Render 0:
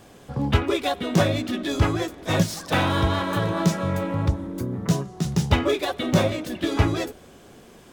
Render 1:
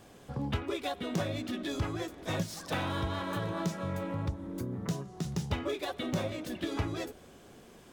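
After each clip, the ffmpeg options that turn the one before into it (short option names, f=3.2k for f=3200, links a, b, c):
-af "acompressor=threshold=-28dB:ratio=2,volume=-6dB"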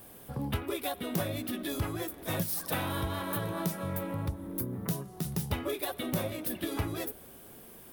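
-af "aexciter=amount=3.4:drive=10:freq=9.5k"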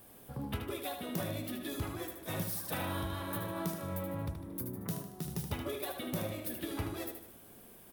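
-af "aecho=1:1:76|152|228|304|380:0.447|0.205|0.0945|0.0435|0.02,volume=-5.5dB"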